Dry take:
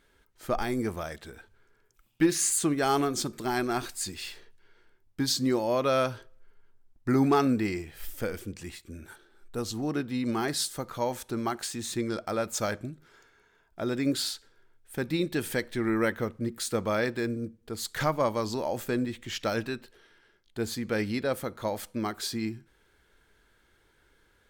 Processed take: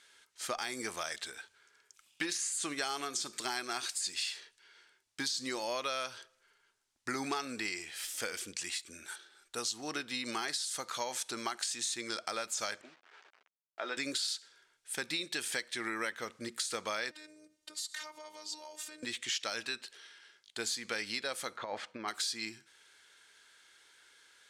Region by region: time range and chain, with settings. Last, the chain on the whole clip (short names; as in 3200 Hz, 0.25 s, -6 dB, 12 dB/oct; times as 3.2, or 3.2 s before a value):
12.81–13.97 level-crossing sampler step -51.5 dBFS + BPF 440–2400 Hz + doubler 12 ms -7.5 dB
17.11–19.03 comb 2.2 ms, depth 54% + compressor 8:1, threshold -41 dBFS + robotiser 306 Hz
21.57–22.08 LPF 1900 Hz + negative-ratio compressor -32 dBFS, ratio -0.5
whole clip: de-esser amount 70%; weighting filter ITU-R 468; compressor 5:1, threshold -33 dBFS